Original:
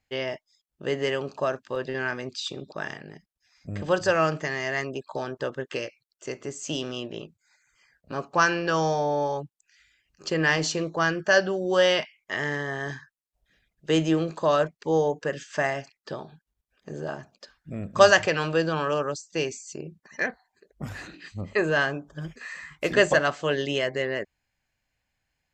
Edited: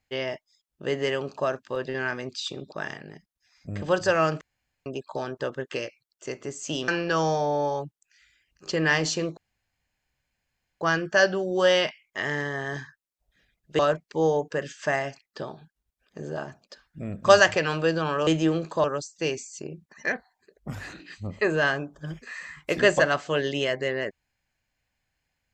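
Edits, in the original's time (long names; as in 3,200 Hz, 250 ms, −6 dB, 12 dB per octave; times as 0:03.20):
0:04.41–0:04.86: fill with room tone
0:06.88–0:08.46: remove
0:10.95: splice in room tone 1.44 s
0:13.93–0:14.50: move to 0:18.98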